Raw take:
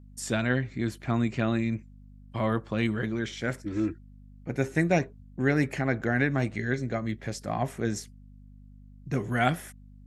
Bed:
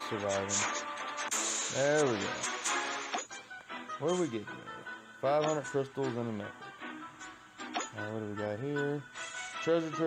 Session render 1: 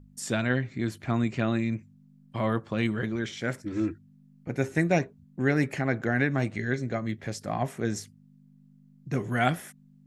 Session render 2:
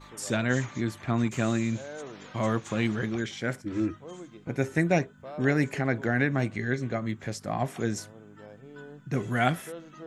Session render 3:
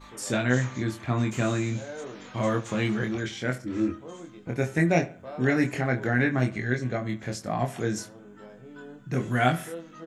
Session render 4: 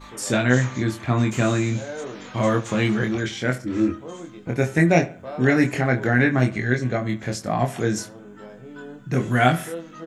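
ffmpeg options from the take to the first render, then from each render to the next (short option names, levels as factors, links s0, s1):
-af "bandreject=f=50:t=h:w=4,bandreject=f=100:t=h:w=4"
-filter_complex "[1:a]volume=0.251[s0];[0:a][s0]amix=inputs=2:normalize=0"
-filter_complex "[0:a]asplit=2[s0][s1];[s1]adelay=24,volume=0.631[s2];[s0][s2]amix=inputs=2:normalize=0,asplit=2[s3][s4];[s4]adelay=70,lowpass=f=3100:p=1,volume=0.133,asplit=2[s5][s6];[s6]adelay=70,lowpass=f=3100:p=1,volume=0.41,asplit=2[s7][s8];[s8]adelay=70,lowpass=f=3100:p=1,volume=0.41[s9];[s3][s5][s7][s9]amix=inputs=4:normalize=0"
-af "volume=1.88,alimiter=limit=0.794:level=0:latency=1"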